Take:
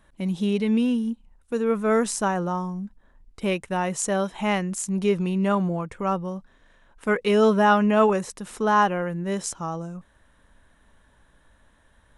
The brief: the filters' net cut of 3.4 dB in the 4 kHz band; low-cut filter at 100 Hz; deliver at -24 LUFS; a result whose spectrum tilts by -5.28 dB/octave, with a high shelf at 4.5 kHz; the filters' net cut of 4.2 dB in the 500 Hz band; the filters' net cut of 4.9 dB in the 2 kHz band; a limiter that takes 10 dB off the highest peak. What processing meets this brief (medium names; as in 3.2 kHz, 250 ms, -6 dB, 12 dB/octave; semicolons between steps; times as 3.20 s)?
high-pass 100 Hz; peaking EQ 500 Hz -5 dB; peaking EQ 2 kHz -7 dB; peaking EQ 4 kHz -6 dB; treble shelf 4.5 kHz +8 dB; trim +3 dB; peak limiter -13.5 dBFS